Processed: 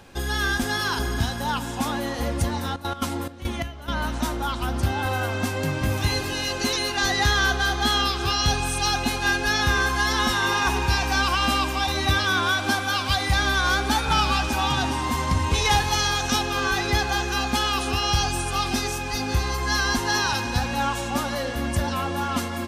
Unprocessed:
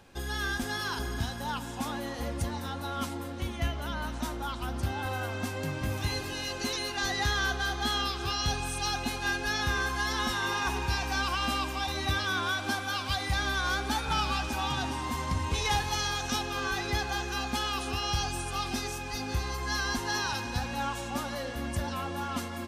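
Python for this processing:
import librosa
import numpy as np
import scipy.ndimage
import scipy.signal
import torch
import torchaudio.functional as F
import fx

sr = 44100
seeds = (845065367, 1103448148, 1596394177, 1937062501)

y = fx.step_gate(x, sr, bpm=174, pattern='xx.x.xxx..xx...', floor_db=-12.0, edge_ms=4.5, at=(2.69, 3.91), fade=0.02)
y = y * 10.0 ** (8.0 / 20.0)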